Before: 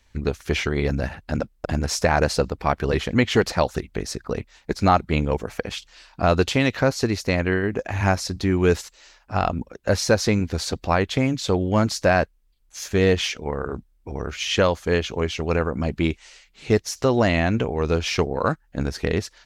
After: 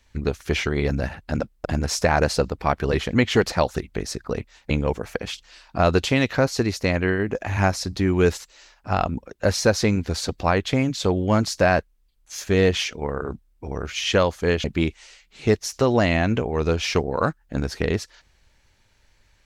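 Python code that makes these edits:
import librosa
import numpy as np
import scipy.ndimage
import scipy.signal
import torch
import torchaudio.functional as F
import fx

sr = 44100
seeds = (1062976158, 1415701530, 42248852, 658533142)

y = fx.edit(x, sr, fx.cut(start_s=4.7, length_s=0.44),
    fx.cut(start_s=15.08, length_s=0.79), tone=tone)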